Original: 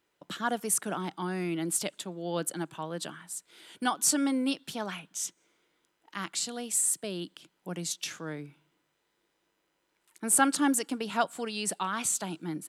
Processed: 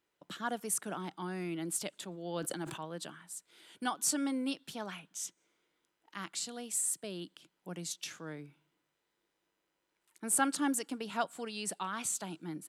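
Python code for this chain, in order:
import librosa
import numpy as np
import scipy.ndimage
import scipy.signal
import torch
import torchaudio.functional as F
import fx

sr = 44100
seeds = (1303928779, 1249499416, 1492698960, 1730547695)

y = fx.sustainer(x, sr, db_per_s=56.0, at=(1.94, 2.85))
y = y * librosa.db_to_amplitude(-6.0)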